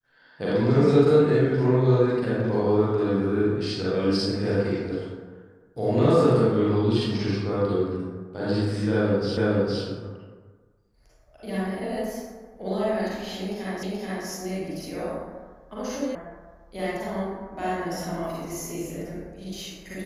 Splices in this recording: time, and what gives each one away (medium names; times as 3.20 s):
9.37 s: repeat of the last 0.46 s
13.83 s: repeat of the last 0.43 s
16.15 s: sound stops dead